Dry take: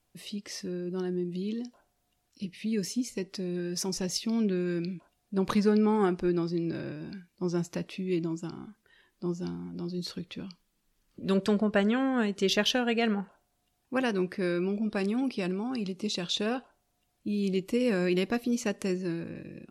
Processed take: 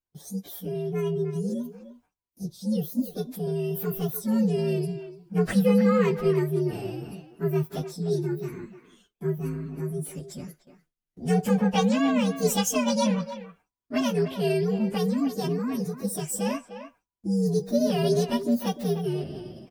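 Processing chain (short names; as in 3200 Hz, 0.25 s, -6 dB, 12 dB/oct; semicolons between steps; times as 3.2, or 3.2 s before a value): inharmonic rescaling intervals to 130%; speakerphone echo 0.3 s, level -10 dB; gate with hold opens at -55 dBFS; gain +5.5 dB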